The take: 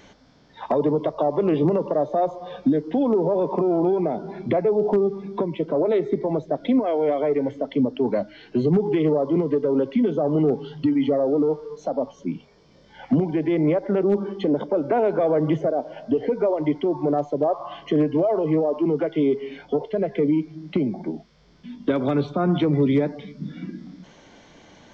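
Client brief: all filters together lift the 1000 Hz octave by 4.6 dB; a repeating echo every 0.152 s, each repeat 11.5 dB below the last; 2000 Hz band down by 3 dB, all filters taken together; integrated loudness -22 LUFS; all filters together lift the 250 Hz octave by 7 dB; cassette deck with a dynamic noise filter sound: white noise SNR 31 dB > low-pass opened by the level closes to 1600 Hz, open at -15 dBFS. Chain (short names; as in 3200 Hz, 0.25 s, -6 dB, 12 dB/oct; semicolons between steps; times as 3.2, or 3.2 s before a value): bell 250 Hz +8.5 dB; bell 1000 Hz +7.5 dB; bell 2000 Hz -7 dB; feedback echo 0.152 s, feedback 27%, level -11.5 dB; white noise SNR 31 dB; low-pass opened by the level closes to 1600 Hz, open at -15 dBFS; gain -5 dB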